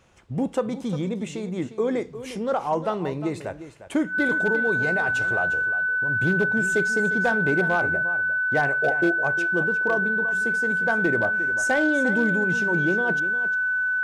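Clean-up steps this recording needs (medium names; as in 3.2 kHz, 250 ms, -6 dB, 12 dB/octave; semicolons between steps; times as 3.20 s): clip repair -14 dBFS; band-stop 1.5 kHz, Q 30; inverse comb 353 ms -13 dB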